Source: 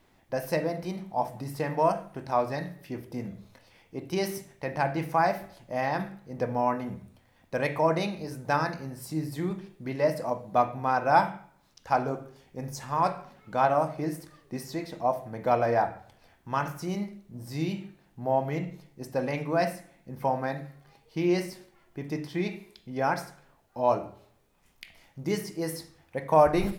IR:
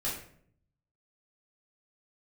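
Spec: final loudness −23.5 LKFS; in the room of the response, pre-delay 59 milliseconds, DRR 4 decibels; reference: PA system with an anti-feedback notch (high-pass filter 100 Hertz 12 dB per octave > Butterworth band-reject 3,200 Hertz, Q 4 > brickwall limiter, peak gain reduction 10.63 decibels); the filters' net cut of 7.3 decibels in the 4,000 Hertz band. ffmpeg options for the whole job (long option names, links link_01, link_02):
-filter_complex "[0:a]equalizer=frequency=4000:width_type=o:gain=-8,asplit=2[link_01][link_02];[1:a]atrim=start_sample=2205,adelay=59[link_03];[link_02][link_03]afir=irnorm=-1:irlink=0,volume=-8.5dB[link_04];[link_01][link_04]amix=inputs=2:normalize=0,highpass=100,asuperstop=centerf=3200:order=8:qfactor=4,volume=8dB,alimiter=limit=-11dB:level=0:latency=1"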